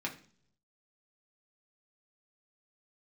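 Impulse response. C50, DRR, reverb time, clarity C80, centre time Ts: 12.5 dB, -1.5 dB, 0.55 s, 17.0 dB, 13 ms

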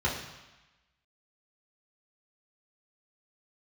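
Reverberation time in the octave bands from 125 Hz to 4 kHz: 1.0 s, 1.0 s, 0.95 s, 1.2 s, 1.2 s, 1.1 s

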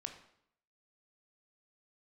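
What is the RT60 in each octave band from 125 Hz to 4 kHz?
0.70 s, 0.75 s, 0.70 s, 0.70 s, 0.65 s, 0.60 s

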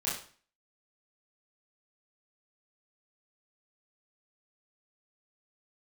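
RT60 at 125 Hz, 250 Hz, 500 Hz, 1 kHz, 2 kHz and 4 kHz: 0.45 s, 0.45 s, 0.45 s, 0.45 s, 0.45 s, 0.40 s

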